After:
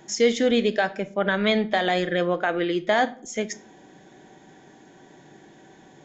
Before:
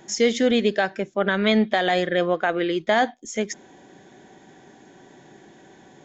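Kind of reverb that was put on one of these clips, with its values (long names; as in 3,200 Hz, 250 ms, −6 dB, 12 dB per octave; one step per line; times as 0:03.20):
rectangular room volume 610 cubic metres, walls furnished, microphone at 0.55 metres
level −1.5 dB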